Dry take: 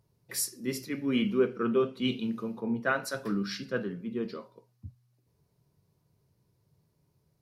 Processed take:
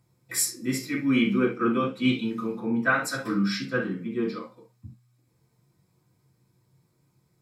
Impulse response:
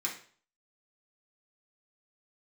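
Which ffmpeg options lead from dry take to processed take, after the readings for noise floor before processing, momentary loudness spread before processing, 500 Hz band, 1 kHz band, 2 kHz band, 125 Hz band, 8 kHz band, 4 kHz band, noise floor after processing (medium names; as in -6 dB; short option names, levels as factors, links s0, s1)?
-73 dBFS, 13 LU, +0.5 dB, +6.5 dB, +7.5 dB, +6.0 dB, +7.0 dB, +4.0 dB, -69 dBFS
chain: -filter_complex "[1:a]atrim=start_sample=2205,afade=t=out:st=0.13:d=0.01,atrim=end_sample=6174[s0];[0:a][s0]afir=irnorm=-1:irlink=0,volume=1.5"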